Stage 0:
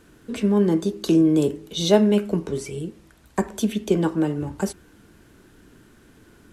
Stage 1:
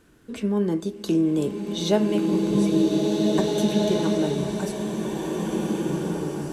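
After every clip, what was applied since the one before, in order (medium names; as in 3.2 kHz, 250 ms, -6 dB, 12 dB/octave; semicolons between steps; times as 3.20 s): swelling reverb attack 2050 ms, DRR -2.5 dB; trim -4.5 dB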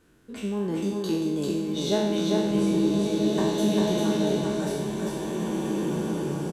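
spectral sustain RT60 1.05 s; delay 396 ms -3 dB; trim -6 dB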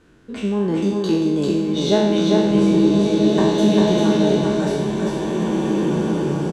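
distance through air 69 m; trim +8 dB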